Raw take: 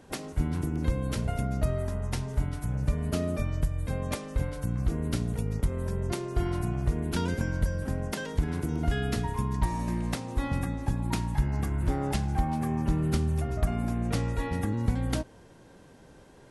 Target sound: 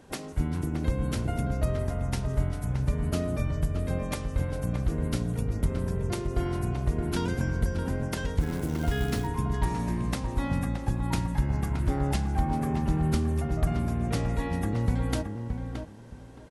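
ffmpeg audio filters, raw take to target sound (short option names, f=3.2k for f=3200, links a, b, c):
-filter_complex "[0:a]asplit=2[a][b];[b]adelay=621,lowpass=f=2k:p=1,volume=-6dB,asplit=2[c][d];[d]adelay=621,lowpass=f=2k:p=1,volume=0.21,asplit=2[e][f];[f]adelay=621,lowpass=f=2k:p=1,volume=0.21[g];[a][c][e][g]amix=inputs=4:normalize=0,asplit=3[h][i][j];[h]afade=t=out:st=8.4:d=0.02[k];[i]acrusher=bits=5:mode=log:mix=0:aa=0.000001,afade=t=in:st=8.4:d=0.02,afade=t=out:st=9.26:d=0.02[l];[j]afade=t=in:st=9.26:d=0.02[m];[k][l][m]amix=inputs=3:normalize=0"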